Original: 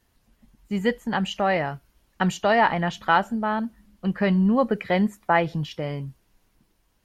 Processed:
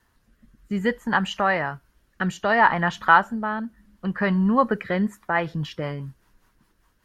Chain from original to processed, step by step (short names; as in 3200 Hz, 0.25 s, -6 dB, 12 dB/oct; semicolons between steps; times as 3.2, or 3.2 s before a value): band shelf 1300 Hz +8 dB 1.2 oct; in parallel at -3 dB: compressor, threshold -31 dBFS, peak gain reduction 22 dB; on the sum: rotary speaker horn 0.6 Hz, later 5 Hz, at 4.63; gain -1.5 dB